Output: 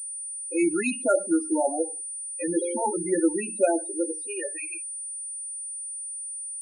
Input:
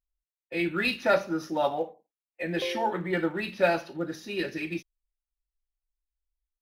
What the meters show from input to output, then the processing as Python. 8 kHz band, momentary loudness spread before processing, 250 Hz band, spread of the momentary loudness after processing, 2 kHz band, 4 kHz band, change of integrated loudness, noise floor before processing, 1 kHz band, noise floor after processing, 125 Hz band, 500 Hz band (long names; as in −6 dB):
+24.5 dB, 10 LU, +5.5 dB, 8 LU, −5.0 dB, below −10 dB, +2.0 dB, below −85 dBFS, −1.0 dB, −36 dBFS, −8.5 dB, +2.5 dB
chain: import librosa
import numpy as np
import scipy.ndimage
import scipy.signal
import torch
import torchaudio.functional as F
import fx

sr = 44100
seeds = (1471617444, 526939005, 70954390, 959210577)

y = fx.filter_sweep_highpass(x, sr, from_hz=280.0, to_hz=3500.0, start_s=3.7, end_s=6.13, q=2.6)
y = fx.spec_topn(y, sr, count=8)
y = fx.pwm(y, sr, carrier_hz=9300.0)